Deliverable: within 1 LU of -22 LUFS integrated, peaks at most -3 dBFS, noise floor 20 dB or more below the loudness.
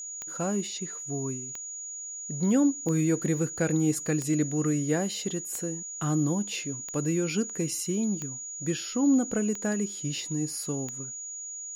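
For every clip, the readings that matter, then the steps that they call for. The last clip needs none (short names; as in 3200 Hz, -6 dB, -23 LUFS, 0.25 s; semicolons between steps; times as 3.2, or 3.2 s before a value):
clicks 9; steady tone 6800 Hz; tone level -36 dBFS; loudness -29.0 LUFS; peak -13.5 dBFS; loudness target -22.0 LUFS
-> de-click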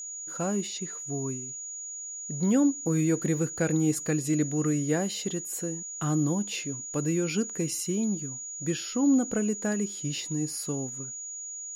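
clicks 0; steady tone 6800 Hz; tone level -36 dBFS
-> notch 6800 Hz, Q 30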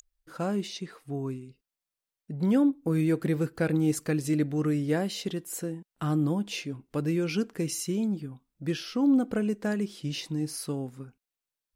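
steady tone none; loudness -29.0 LUFS; peak -14.0 dBFS; loudness target -22.0 LUFS
-> gain +7 dB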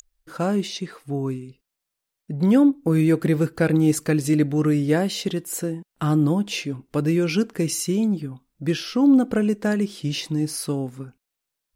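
loudness -22.0 LUFS; peak -7.0 dBFS; noise floor -83 dBFS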